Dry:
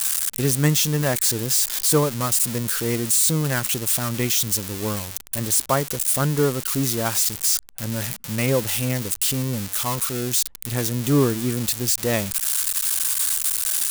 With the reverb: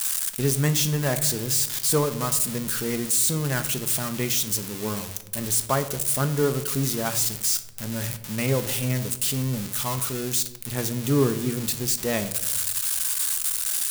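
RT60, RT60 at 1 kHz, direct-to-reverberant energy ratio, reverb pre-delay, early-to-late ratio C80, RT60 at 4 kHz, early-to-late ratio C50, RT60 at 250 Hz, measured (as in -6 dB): 0.95 s, 0.80 s, 8.0 dB, 5 ms, 15.5 dB, 0.55 s, 12.5 dB, 1.3 s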